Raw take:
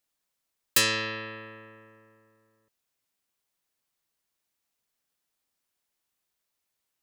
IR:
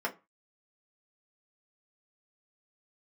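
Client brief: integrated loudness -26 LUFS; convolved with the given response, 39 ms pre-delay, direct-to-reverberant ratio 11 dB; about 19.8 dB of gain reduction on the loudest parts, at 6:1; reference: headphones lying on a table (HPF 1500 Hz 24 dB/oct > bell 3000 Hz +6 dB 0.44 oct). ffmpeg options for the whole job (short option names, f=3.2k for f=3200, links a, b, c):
-filter_complex "[0:a]acompressor=threshold=-40dB:ratio=6,asplit=2[a][b];[1:a]atrim=start_sample=2205,adelay=39[c];[b][c]afir=irnorm=-1:irlink=0,volume=-17.5dB[d];[a][d]amix=inputs=2:normalize=0,highpass=f=1.5k:w=0.5412,highpass=f=1.5k:w=1.3066,equalizer=f=3k:t=o:w=0.44:g=6,volume=16.5dB"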